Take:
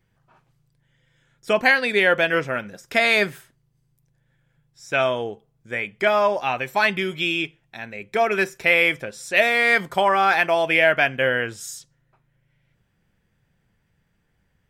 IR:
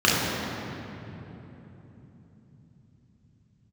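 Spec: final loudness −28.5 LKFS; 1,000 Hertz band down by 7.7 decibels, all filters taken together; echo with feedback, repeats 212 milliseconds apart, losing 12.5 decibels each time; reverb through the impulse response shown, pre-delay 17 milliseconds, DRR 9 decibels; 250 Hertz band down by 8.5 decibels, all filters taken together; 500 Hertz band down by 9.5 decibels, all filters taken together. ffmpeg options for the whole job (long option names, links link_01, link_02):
-filter_complex "[0:a]equalizer=frequency=250:width_type=o:gain=-9,equalizer=frequency=500:width_type=o:gain=-8,equalizer=frequency=1000:width_type=o:gain=-7,aecho=1:1:212|424|636:0.237|0.0569|0.0137,asplit=2[link_01][link_02];[1:a]atrim=start_sample=2205,adelay=17[link_03];[link_02][link_03]afir=irnorm=-1:irlink=0,volume=-30dB[link_04];[link_01][link_04]amix=inputs=2:normalize=0,volume=-6dB"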